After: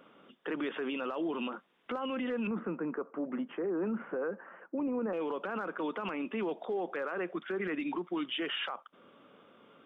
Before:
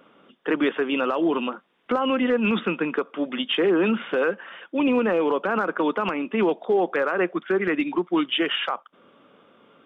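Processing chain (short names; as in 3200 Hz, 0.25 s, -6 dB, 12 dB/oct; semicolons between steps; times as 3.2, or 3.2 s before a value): 2.47–5.13 Bessel low-pass 1100 Hz, order 6; limiter -23.5 dBFS, peak gain reduction 10 dB; gain -4 dB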